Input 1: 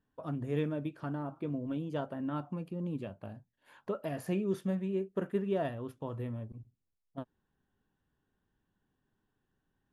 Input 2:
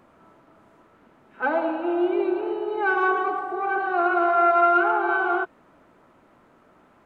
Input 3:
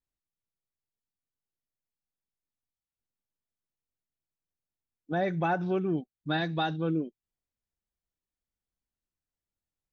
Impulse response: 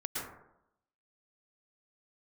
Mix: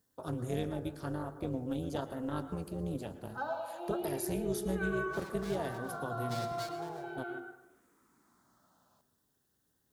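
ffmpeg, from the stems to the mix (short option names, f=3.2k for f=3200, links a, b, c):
-filter_complex "[0:a]tremolo=f=250:d=0.857,volume=2dB,asplit=2[a][b];[b]volume=-13dB[c];[1:a]asplit=2[d][e];[e]afreqshift=-0.37[f];[d][f]amix=inputs=2:normalize=1,adelay=1950,volume=-13dB,asplit=2[g][h];[h]volume=-14dB[i];[2:a]highshelf=f=3k:g=-8,aeval=exprs='abs(val(0))':c=same,volume=-16.5dB,asplit=3[j][k][l];[k]volume=-7dB[m];[l]apad=whole_len=397274[n];[g][n]sidechaincompress=threshold=-50dB:ratio=8:attack=16:release=1230[o];[3:a]atrim=start_sample=2205[p];[c][i][m]amix=inputs=3:normalize=0[q];[q][p]afir=irnorm=-1:irlink=0[r];[a][o][j][r]amix=inputs=4:normalize=0,aexciter=amount=4.6:drive=6.2:freq=3.8k,highpass=50,alimiter=limit=-22.5dB:level=0:latency=1:release=473"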